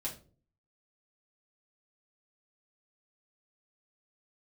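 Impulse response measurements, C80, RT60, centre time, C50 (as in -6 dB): 16.5 dB, 0.40 s, 18 ms, 10.5 dB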